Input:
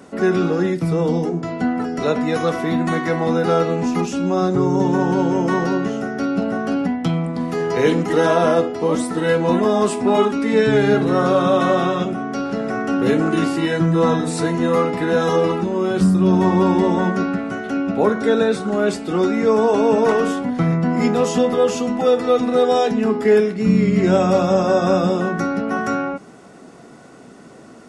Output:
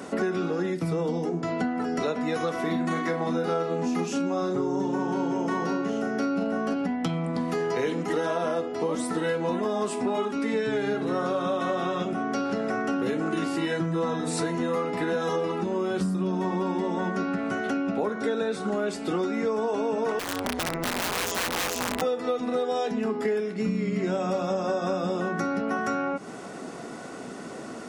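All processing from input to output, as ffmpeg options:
-filter_complex "[0:a]asettb=1/sr,asplit=3[s0][s1][s2];[s0]atrim=end=2.614[s3];[s1]atrim=start=2.61:end=6.74,asetpts=PTS-STARTPTS,afade=t=in:d=0.004:c=qsin,afade=t=out:st=4.126:d=0.004:c=qsin,highpass=120,asplit=2[s4][s5];[s5]adelay=36,volume=0.531[s6];[s4][s6]amix=inputs=2:normalize=0,atrim=end_sample=182133[s7];[s2]atrim=start=6.736[s8];[s3][s7]acrossfade=d=0.004:c1=hsin:c2=qsin[s9];[s9][s8]acrossfade=d=0.004:c1=qsin:c2=hsin,asettb=1/sr,asplit=3[s10][s11][s12];[s10]atrim=end=20.194[s13];[s11]atrim=start=20.19:end=22.02,asetpts=PTS-STARTPTS,afade=t=in:d=0.004:c=qsin,afade=t=out:st=1.826:d=0.004:c=qsin,highpass=f=210:w=0.5412,highpass=f=210:w=1.3066,tremolo=f=180:d=0.919,aeval=exprs='(mod(8.41*val(0)+1,2)-1)/8.41':c=same[s14];[s12]atrim=start=22.016[s15];[s13][s14]acrossfade=d=0.004:c1=hsin:c2=qsin[s16];[s16][s15]acrossfade=d=0.004:c1=qsin:c2=hsin,lowshelf=f=140:g=-8.5,bandreject=f=46.9:t=h:w=4,bandreject=f=93.8:t=h:w=4,bandreject=f=140.7:t=h:w=4,acompressor=threshold=0.0282:ratio=6,volume=1.88"

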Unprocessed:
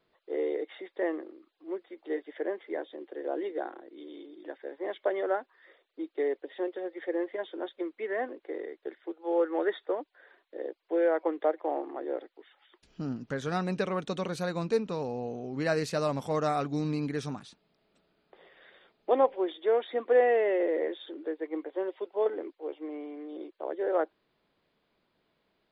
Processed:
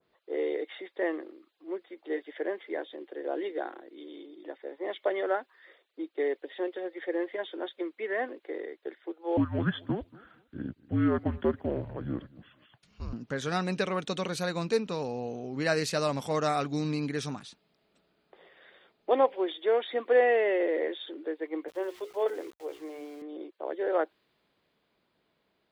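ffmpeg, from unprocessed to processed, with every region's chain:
-filter_complex "[0:a]asettb=1/sr,asplit=3[s0][s1][s2];[s0]atrim=end=4.244[s3];[s1]atrim=start=4.24:end=5.12,asetpts=PTS-STARTPTS,afade=t=in:d=0.004:c=qsin,afade=t=out:st=0.876:d=0.004:c=qsin,highpass=57,bandreject=f=1600:w=9[s4];[s2]atrim=start=5.116[s5];[s3][s4]acrossfade=d=0.004:c1=hsin:c2=qsin[s6];[s6][s5]acrossfade=d=0.004:c1=qsin:c2=hsin,asettb=1/sr,asplit=3[s7][s8][s9];[s7]atrim=end=9.374[s10];[s8]atrim=start=9.37:end=13.13,asetpts=PTS-STARTPTS,afade=t=in:d=0.004:c=qsin,afade=t=out:st=3.756:d=0.004:c=qsin,afreqshift=-230,asplit=2[s11][s12];[s12]adelay=233,lowpass=f=2000:p=1,volume=0.075,asplit=2[s13][s14];[s14]adelay=233,lowpass=f=2000:p=1,volume=0.26[s15];[s11][s13][s15]amix=inputs=3:normalize=0,atrim=end_sample=165816[s16];[s9]atrim=start=13.126[s17];[s10][s16]acrossfade=d=0.004:c1=hsin:c2=qsin[s18];[s18][s17]acrossfade=d=0.004:c1=qsin:c2=hsin,asettb=1/sr,asplit=3[s19][s20][s21];[s19]atrim=end=21.684[s22];[s20]atrim=start=21.68:end=23.22,asetpts=PTS-STARTPTS,afade=t=in:d=0.004:c=qsin,afade=t=out:st=1.536:d=0.004:c=qsin,highpass=280,bandreject=f=60:t=h:w=6,bandreject=f=120:t=h:w=6,bandreject=f=180:t=h:w=6,bandreject=f=240:t=h:w=6,bandreject=f=300:t=h:w=6,bandreject=f=360:t=h:w=6,bandreject=f=420:t=h:w=6,bandreject=f=480:t=h:w=6,aeval=exprs='val(0)*gte(abs(val(0)),0.00251)':c=same[s23];[s21]atrim=start=23.216[s24];[s22][s23]acrossfade=d=0.004:c1=hsin:c2=qsin[s25];[s25][s24]acrossfade=d=0.004:c1=qsin:c2=hsin,highpass=41,adynamicequalizer=threshold=0.00708:dfrequency=1600:dqfactor=0.7:tfrequency=1600:tqfactor=0.7:attack=5:release=100:ratio=0.375:range=3:mode=boostabove:tftype=highshelf"

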